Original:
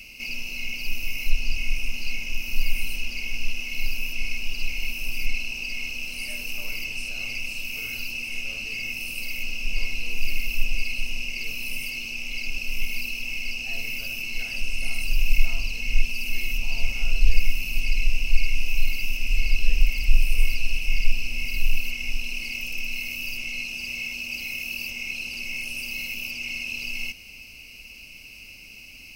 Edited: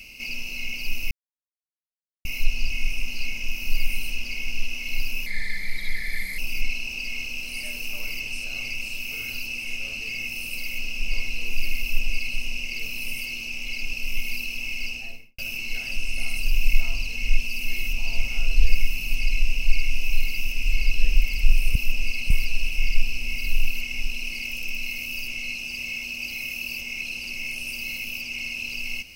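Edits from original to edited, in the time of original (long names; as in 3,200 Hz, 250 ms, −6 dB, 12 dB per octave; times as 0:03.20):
0:01.11: splice in silence 1.14 s
0:04.12–0:05.03: play speed 81%
0:10.47–0:11.02: duplicate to 0:20.40
0:13.52–0:14.03: fade out and dull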